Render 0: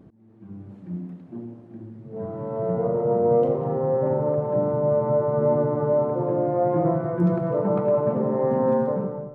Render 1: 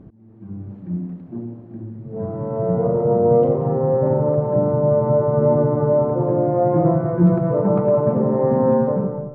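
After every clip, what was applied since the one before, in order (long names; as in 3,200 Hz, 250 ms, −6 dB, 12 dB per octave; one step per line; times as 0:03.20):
low-pass filter 1,800 Hz 6 dB per octave
low-shelf EQ 110 Hz +9.5 dB
level +4 dB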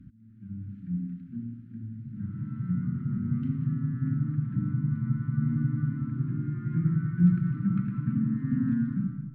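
Chebyshev band-stop filter 270–1,400 Hz, order 4
level −5 dB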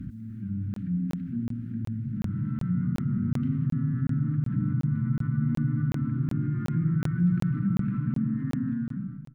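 fade-out on the ending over 1.54 s
regular buffer underruns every 0.37 s, samples 1,024, zero, from 0:00.74
envelope flattener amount 50%
level −4 dB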